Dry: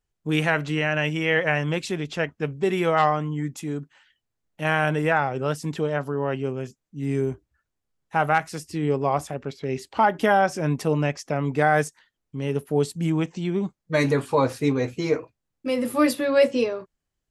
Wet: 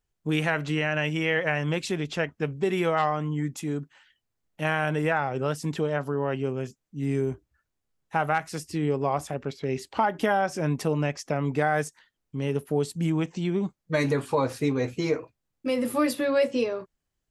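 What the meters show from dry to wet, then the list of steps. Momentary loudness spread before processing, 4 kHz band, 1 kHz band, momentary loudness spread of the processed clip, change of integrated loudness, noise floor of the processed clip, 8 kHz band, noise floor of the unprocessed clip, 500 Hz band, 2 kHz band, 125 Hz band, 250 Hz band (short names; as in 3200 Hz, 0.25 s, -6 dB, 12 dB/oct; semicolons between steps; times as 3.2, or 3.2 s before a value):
10 LU, -2.5 dB, -4.5 dB, 7 LU, -3.0 dB, -82 dBFS, -1.5 dB, -82 dBFS, -3.0 dB, -3.5 dB, -2.0 dB, -2.5 dB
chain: compressor 2:1, threshold -23 dBFS, peak gain reduction 6 dB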